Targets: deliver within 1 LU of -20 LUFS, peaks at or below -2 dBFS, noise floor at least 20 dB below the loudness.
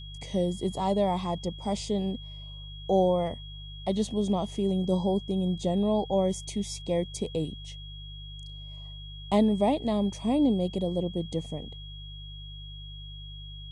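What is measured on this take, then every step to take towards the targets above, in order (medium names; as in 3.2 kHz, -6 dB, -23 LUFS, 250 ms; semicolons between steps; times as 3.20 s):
hum 50 Hz; highest harmonic 150 Hz; hum level -40 dBFS; steady tone 3.3 kHz; tone level -45 dBFS; loudness -28.5 LUFS; peak level -11.5 dBFS; loudness target -20.0 LUFS
-> de-hum 50 Hz, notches 3; band-stop 3.3 kHz, Q 30; trim +8.5 dB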